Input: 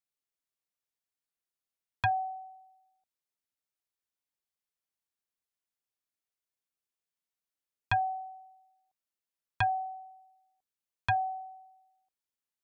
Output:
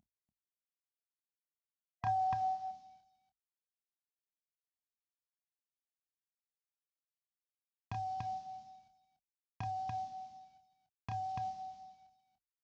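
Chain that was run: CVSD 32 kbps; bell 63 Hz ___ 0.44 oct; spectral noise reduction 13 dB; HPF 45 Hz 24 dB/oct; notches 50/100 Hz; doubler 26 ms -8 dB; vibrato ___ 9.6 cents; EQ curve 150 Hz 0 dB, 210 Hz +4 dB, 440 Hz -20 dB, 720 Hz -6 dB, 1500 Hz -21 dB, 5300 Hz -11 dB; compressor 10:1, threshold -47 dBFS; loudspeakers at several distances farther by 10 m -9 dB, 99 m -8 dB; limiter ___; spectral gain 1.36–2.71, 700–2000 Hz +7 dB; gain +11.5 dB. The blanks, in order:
-2.5 dB, 4.8 Hz, -41 dBFS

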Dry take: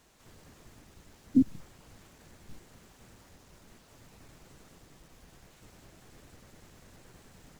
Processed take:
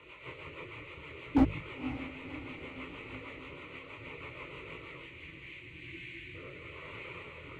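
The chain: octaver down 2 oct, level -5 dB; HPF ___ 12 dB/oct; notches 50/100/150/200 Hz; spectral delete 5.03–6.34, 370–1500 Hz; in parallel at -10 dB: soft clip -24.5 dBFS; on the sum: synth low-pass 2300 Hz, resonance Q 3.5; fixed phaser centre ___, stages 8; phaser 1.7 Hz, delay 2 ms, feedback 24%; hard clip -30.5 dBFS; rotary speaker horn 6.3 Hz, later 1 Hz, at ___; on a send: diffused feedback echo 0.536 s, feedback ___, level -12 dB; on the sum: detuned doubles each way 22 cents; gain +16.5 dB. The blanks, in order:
130 Hz, 1100 Hz, 4.92, 56%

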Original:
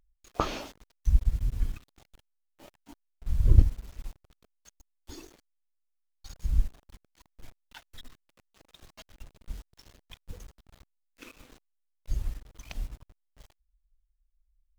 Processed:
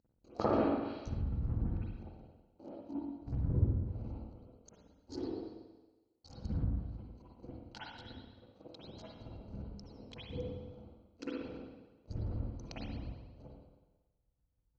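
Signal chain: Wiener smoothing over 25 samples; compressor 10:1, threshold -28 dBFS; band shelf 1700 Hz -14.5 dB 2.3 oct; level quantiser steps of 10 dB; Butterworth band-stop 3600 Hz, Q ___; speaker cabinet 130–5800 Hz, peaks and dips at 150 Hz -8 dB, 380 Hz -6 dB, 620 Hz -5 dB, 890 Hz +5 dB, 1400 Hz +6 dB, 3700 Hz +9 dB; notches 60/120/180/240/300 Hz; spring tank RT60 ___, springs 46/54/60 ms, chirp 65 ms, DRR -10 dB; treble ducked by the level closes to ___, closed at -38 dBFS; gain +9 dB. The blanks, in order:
6.7, 1.2 s, 1500 Hz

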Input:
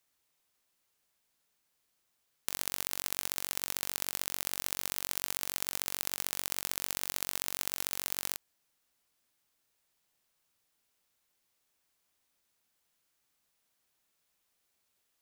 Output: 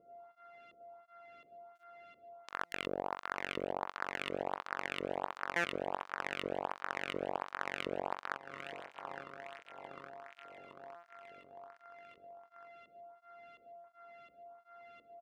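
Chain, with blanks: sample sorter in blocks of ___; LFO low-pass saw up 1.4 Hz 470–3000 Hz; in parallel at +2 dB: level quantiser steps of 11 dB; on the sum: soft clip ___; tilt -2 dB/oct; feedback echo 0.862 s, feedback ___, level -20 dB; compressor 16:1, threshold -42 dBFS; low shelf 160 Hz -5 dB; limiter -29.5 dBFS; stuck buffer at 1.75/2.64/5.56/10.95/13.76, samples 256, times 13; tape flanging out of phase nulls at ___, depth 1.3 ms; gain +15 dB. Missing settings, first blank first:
64 samples, -17 dBFS, 58%, 1.4 Hz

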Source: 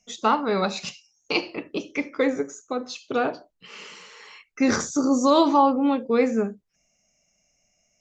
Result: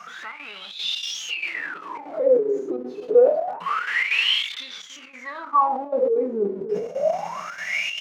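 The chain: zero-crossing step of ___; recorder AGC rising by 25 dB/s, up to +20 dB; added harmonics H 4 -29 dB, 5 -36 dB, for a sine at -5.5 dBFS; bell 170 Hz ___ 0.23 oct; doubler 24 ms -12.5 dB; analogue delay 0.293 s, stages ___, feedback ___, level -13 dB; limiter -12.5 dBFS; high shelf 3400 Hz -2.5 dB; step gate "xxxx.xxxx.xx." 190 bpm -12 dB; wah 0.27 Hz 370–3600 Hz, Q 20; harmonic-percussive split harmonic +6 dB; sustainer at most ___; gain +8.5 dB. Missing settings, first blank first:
-23 dBFS, +11.5 dB, 4096, 49%, 99 dB/s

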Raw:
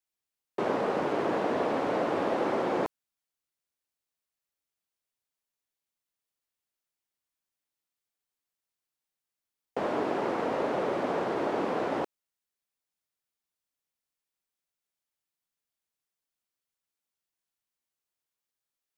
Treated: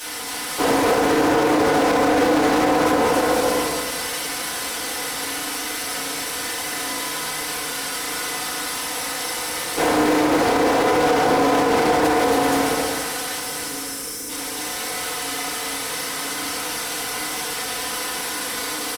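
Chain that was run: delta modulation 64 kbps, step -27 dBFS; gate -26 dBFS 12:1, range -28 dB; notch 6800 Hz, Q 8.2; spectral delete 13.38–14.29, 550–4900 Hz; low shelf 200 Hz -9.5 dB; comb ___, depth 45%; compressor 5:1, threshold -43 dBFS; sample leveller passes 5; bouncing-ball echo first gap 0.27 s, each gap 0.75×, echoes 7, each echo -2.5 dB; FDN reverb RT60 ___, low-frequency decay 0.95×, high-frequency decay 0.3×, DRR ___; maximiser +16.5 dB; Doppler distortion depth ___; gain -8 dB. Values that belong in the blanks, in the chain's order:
4 ms, 1.2 s, -8 dB, 0.18 ms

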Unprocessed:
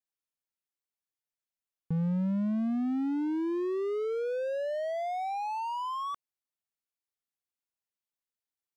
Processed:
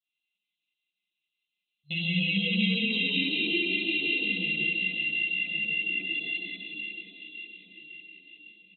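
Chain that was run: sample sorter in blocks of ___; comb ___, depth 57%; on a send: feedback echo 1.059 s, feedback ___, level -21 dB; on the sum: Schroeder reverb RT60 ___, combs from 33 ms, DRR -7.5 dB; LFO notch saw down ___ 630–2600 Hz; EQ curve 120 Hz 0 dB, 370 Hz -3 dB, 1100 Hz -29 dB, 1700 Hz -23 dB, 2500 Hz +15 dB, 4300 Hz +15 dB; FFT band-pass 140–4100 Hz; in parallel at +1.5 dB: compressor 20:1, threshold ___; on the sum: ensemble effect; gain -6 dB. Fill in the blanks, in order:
64 samples, 6.2 ms, 55%, 3.5 s, 5.5 Hz, -30 dBFS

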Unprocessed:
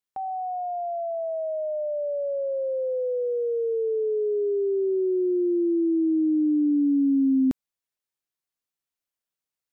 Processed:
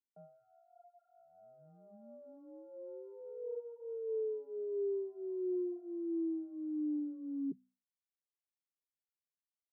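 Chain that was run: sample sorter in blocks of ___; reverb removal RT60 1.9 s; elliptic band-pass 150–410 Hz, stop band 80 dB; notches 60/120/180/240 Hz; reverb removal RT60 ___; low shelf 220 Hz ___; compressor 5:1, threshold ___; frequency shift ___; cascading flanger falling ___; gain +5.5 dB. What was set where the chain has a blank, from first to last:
32 samples, 0.52 s, -2.5 dB, -36 dBFS, +15 Hz, 1.6 Hz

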